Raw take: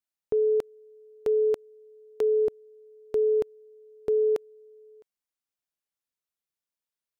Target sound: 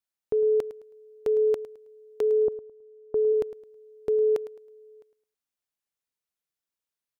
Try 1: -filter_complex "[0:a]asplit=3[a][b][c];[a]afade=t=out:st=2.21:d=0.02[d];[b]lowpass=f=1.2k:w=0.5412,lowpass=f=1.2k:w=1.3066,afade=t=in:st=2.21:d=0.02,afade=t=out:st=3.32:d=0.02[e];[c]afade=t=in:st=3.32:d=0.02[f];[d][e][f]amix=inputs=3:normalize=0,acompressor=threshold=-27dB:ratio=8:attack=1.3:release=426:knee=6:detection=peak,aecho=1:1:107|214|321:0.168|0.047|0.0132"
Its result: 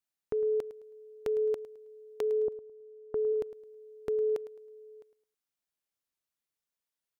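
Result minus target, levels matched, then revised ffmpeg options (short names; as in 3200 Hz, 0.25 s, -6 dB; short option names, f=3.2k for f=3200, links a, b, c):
compressor: peak gain reduction +6.5 dB
-filter_complex "[0:a]asplit=3[a][b][c];[a]afade=t=out:st=2.21:d=0.02[d];[b]lowpass=f=1.2k:w=0.5412,lowpass=f=1.2k:w=1.3066,afade=t=in:st=2.21:d=0.02,afade=t=out:st=3.32:d=0.02[e];[c]afade=t=in:st=3.32:d=0.02[f];[d][e][f]amix=inputs=3:normalize=0,aecho=1:1:107|214|321:0.168|0.047|0.0132"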